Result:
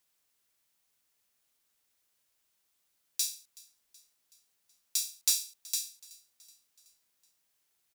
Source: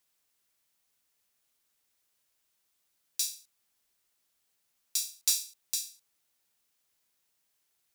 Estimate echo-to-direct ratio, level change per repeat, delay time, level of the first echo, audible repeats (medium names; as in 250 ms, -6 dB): -21.5 dB, -5.0 dB, 375 ms, -23.0 dB, 3